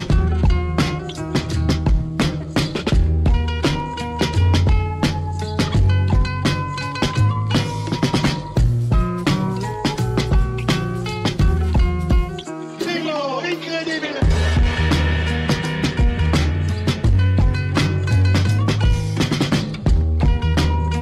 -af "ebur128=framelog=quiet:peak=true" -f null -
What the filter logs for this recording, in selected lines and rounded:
Integrated loudness:
  I:         -19.5 LUFS
  Threshold: -29.5 LUFS
Loudness range:
  LRA:         2.5 LU
  Threshold: -39.6 LUFS
  LRA low:   -20.7 LUFS
  LRA high:  -18.2 LUFS
True peak:
  Peak:       -7.7 dBFS